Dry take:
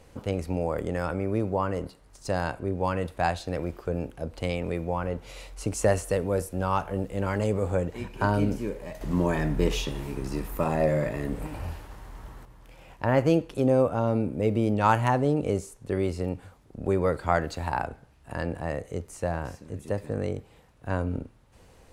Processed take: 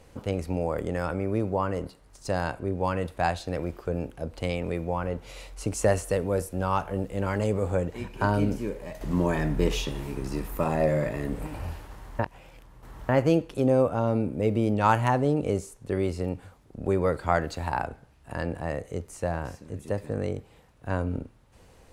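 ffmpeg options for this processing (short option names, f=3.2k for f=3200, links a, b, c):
-filter_complex "[0:a]asplit=3[a][b][c];[a]atrim=end=12.192[d];[b]atrim=start=12.188:end=13.092,asetpts=PTS-STARTPTS,areverse[e];[c]atrim=start=13.088[f];[d][e]acrossfade=d=0.004:c1=hsin:c2=hsin[g];[g][f]acrossfade=d=0.004:c1=hsin:c2=hsin"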